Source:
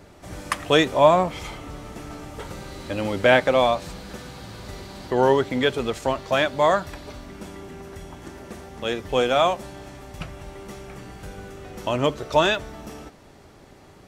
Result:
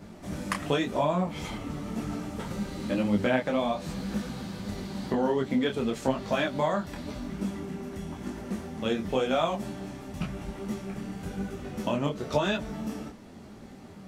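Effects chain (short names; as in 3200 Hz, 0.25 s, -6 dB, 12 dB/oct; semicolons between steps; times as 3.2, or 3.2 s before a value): bell 210 Hz +13.5 dB 0.68 oct; compressor 6:1, threshold -21 dBFS, peak gain reduction 12 dB; detuned doubles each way 33 cents; gain +1.5 dB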